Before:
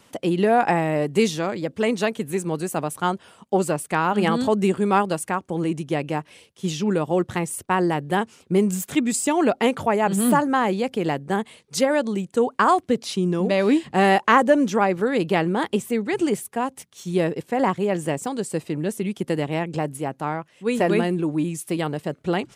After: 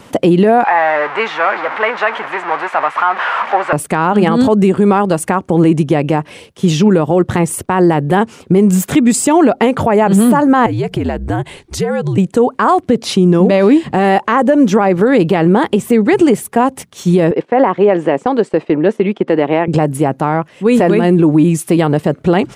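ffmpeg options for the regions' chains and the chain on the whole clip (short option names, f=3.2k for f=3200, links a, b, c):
-filter_complex "[0:a]asettb=1/sr,asplit=3[a][b][c];[a]atrim=end=0.644[d];[b]atrim=start=0.64:end=3.73,asetpts=PTS-STARTPTS,afade=t=in:d=0.004:c=qsin,afade=t=out:st=3.086:d=0.004:c=qsin,aeval=exprs='val(0)+0.5*0.0794*sgn(val(0))':c=same,asuperpass=centerf=1400:order=4:qfactor=1,asplit=2[e][f];[f]adelay=14,volume=-12dB[g];[e][g]amix=inputs=2:normalize=0,atrim=end_sample=136269[h];[c]atrim=start=3.726[i];[d][h]acrossfade=d=0.004:c1=hsin:c2=qsin[j];[j][i]acrossfade=d=0.004:c1=qsin:c2=hsin,asettb=1/sr,asplit=3[k][l][m];[k]atrim=end=10.664[n];[l]atrim=start=10.66:end=12.18,asetpts=PTS-STARTPTS,afade=t=in:d=0.004:c=qsin,afade=t=out:st=1.516:d=0.004:c=qsin,bandreject=f=1.3k:w=17,acompressor=threshold=-32dB:ratio=4:attack=3.2:release=140:knee=1:detection=peak,afreqshift=-78[o];[m]atrim=start=12.176[p];[n][o]acrossfade=d=0.004:c1=hsin:c2=qsin[q];[q][p]acrossfade=d=0.004:c1=qsin:c2=hsin,asettb=1/sr,asplit=3[r][s][t];[r]atrim=end=17.314[u];[s]atrim=start=17.31:end=19.68,asetpts=PTS-STARTPTS,afade=t=in:d=0.004:c=qsin,afade=t=out:st=2.366:d=0.004:c=qsin,highpass=310,lowpass=2.9k,agate=range=-9dB:threshold=-46dB:ratio=16:release=100:detection=peak[v];[t]atrim=start=19.676[w];[u][v]acrossfade=d=0.004:c1=hsin:c2=qsin[x];[x][w]acrossfade=d=0.004:c1=qsin:c2=hsin,highshelf=f=2.2k:g=-9,acompressor=threshold=-22dB:ratio=6,alimiter=level_in=19dB:limit=-1dB:release=50:level=0:latency=1,volume=-1dB"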